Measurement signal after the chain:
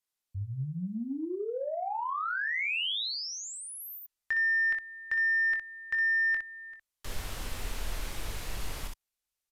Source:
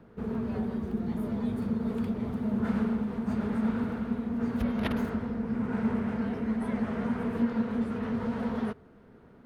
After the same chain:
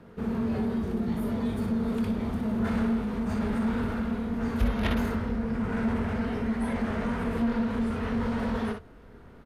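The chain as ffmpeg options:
-filter_complex "[0:a]asplit=2[s0][s1];[s1]aecho=0:1:22|61:0.398|0.473[s2];[s0][s2]amix=inputs=2:normalize=0,acrossover=split=3800[s3][s4];[s4]acompressor=threshold=0.00316:ratio=4:attack=1:release=60[s5];[s3][s5]amix=inputs=2:normalize=0,highshelf=f=2100:g=5.5,asoftclip=type=tanh:threshold=0.1,asubboost=boost=4:cutoff=77,aresample=32000,aresample=44100,volume=1.33"

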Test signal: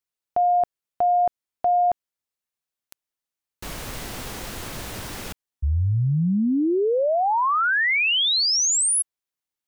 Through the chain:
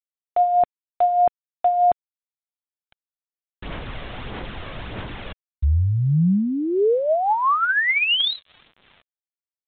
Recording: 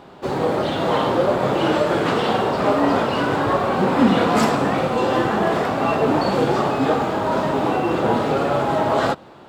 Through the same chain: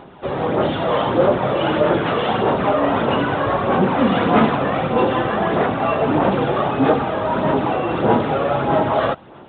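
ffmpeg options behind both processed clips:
-af "aphaser=in_gain=1:out_gain=1:delay=1.8:decay=0.37:speed=1.6:type=sinusoidal" -ar 8000 -c:a adpcm_g726 -b:a 40k

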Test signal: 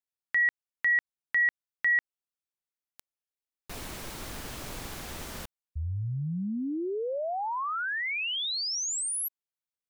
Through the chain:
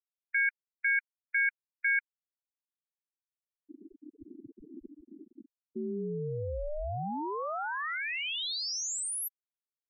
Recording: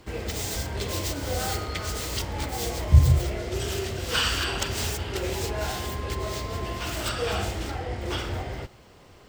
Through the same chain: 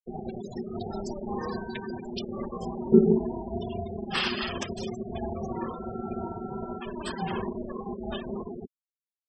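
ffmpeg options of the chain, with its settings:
-af "aeval=exprs='val(0)*sin(2*PI*300*n/s)':c=same,afftfilt=real='re*gte(hypot(re,im),0.0398)':imag='im*gte(hypot(re,im),0.0398)':win_size=1024:overlap=0.75"

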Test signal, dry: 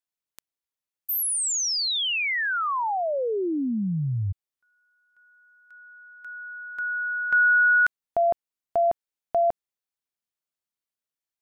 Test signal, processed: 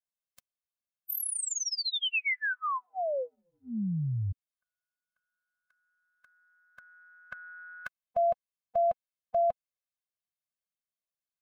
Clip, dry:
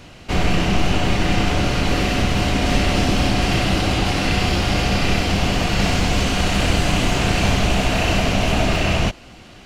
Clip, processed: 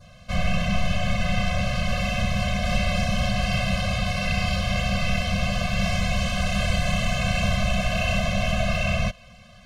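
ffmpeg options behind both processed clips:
-af "adynamicequalizer=threshold=0.01:dfrequency=2500:dqfactor=1.7:tfrequency=2500:tqfactor=1.7:attack=5:release=100:ratio=0.375:range=2:mode=boostabove:tftype=bell,afftfilt=real='re*eq(mod(floor(b*sr/1024/250),2),0)':imag='im*eq(mod(floor(b*sr/1024/250),2),0)':win_size=1024:overlap=0.75,volume=0.596"

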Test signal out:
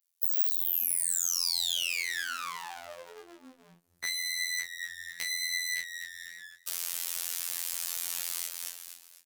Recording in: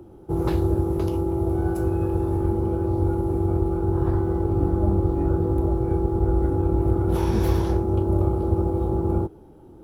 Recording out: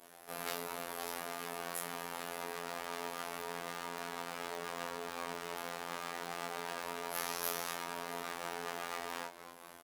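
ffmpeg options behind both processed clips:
-filter_complex "[0:a]asplit=2[s0][s1];[s1]adelay=30,volume=0.501[s2];[s0][s2]amix=inputs=2:normalize=0,adynamicequalizer=threshold=0.0224:dfrequency=770:dqfactor=0.99:tfrequency=770:tqfactor=0.99:attack=5:release=100:ratio=0.375:range=3.5:mode=boostabove:tftype=bell,aresample=32000,aresample=44100,bandreject=f=60:t=h:w=6,bandreject=f=120:t=h:w=6,flanger=delay=3.2:depth=5:regen=81:speed=0.89:shape=triangular,asplit=4[s3][s4][s5][s6];[s4]adelay=249,afreqshift=-49,volume=0.158[s7];[s5]adelay=498,afreqshift=-98,volume=0.0589[s8];[s6]adelay=747,afreqshift=-147,volume=0.0216[s9];[s3][s7][s8][s9]amix=inputs=4:normalize=0,aeval=exprs='abs(val(0))':c=same,flanger=delay=17:depth=7.6:speed=0.25,acompressor=threshold=0.00708:ratio=2,aderivative,afftfilt=real='hypot(re,im)*cos(PI*b)':imag='0':win_size=2048:overlap=0.75,alimiter=level_in=44.7:limit=0.891:release=50:level=0:latency=1,volume=0.376"

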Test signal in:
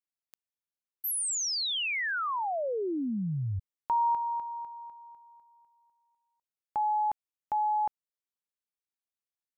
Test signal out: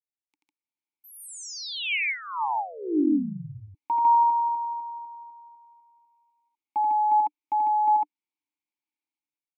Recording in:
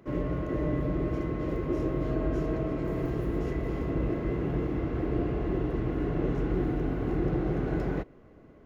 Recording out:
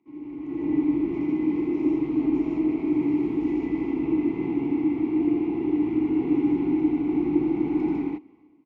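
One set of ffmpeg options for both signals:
-filter_complex "[0:a]highshelf=f=2800:g=11,dynaudnorm=f=110:g=9:m=5.62,asplit=3[s0][s1][s2];[s0]bandpass=f=300:t=q:w=8,volume=1[s3];[s1]bandpass=f=870:t=q:w=8,volume=0.501[s4];[s2]bandpass=f=2240:t=q:w=8,volume=0.355[s5];[s3][s4][s5]amix=inputs=3:normalize=0,aecho=1:1:84.55|151.6:0.794|1,volume=0.596"

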